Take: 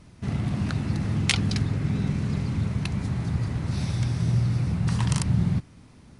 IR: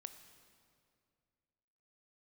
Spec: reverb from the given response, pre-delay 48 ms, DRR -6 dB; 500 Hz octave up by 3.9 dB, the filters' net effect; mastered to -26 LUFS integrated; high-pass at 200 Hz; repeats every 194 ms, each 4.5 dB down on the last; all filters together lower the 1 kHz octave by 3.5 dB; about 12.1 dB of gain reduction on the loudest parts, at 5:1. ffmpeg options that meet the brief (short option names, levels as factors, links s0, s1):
-filter_complex "[0:a]highpass=200,equalizer=f=500:t=o:g=7,equalizer=f=1000:t=o:g=-7,acompressor=threshold=0.0224:ratio=5,aecho=1:1:194|388|582|776|970|1164|1358|1552|1746:0.596|0.357|0.214|0.129|0.0772|0.0463|0.0278|0.0167|0.01,asplit=2[s0][s1];[1:a]atrim=start_sample=2205,adelay=48[s2];[s1][s2]afir=irnorm=-1:irlink=0,volume=3.55[s3];[s0][s3]amix=inputs=2:normalize=0,volume=1.26"